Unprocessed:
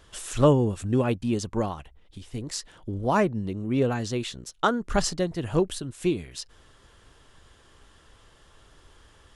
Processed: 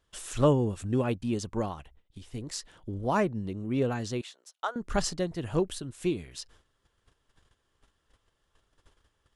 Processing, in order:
noise gate −51 dBFS, range −15 dB
0:04.21–0:04.76: four-pole ladder high-pass 530 Hz, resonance 30%
level −4 dB

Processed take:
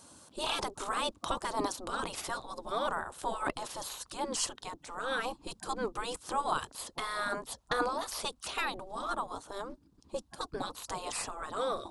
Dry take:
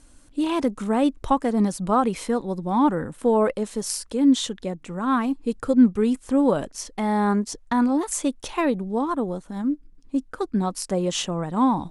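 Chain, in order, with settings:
octave-band graphic EQ 1,000/2,000/4,000 Hz +7/−9/+4 dB
gate on every frequency bin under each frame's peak −15 dB weak
level +2.5 dB

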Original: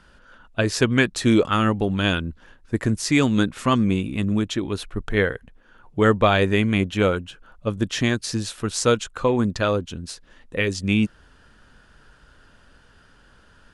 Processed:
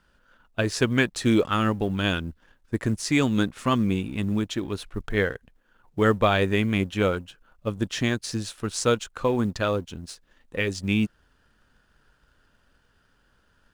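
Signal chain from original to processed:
mu-law and A-law mismatch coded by A
level −3 dB

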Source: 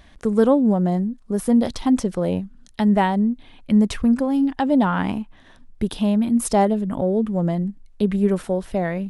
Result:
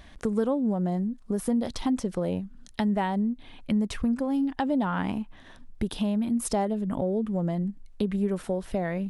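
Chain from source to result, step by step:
downward compressor 2.5 to 1, threshold −27 dBFS, peak gain reduction 10.5 dB

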